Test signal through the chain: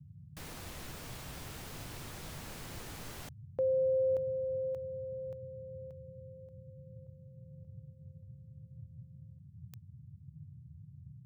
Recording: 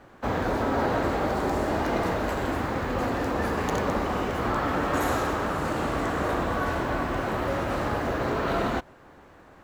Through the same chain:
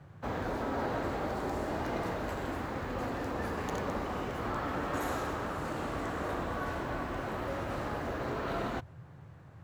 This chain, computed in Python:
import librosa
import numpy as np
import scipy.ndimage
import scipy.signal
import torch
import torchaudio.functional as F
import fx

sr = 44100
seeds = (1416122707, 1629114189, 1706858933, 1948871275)

y = fx.dmg_noise_band(x, sr, seeds[0], low_hz=77.0, high_hz=160.0, level_db=-43.0)
y = F.gain(torch.from_numpy(y), -8.5).numpy()